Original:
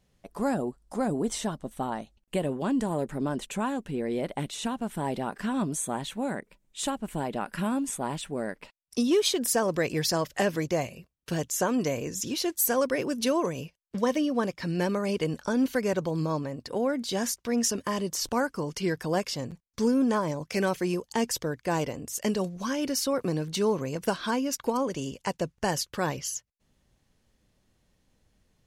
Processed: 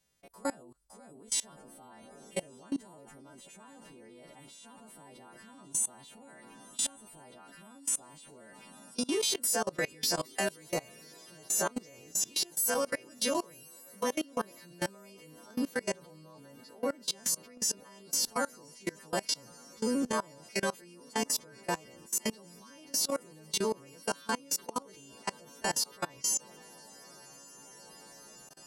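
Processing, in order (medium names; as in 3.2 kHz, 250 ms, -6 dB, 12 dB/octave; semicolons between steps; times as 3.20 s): partials quantised in pitch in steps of 2 st; bass shelf 260 Hz -4 dB; echo that smears into a reverb 1159 ms, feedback 46%, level -14 dB; in parallel at -8.5 dB: saturation -18.5 dBFS, distortion -12 dB; on the sum: level held to a coarse grid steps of 24 dB; trim -5 dB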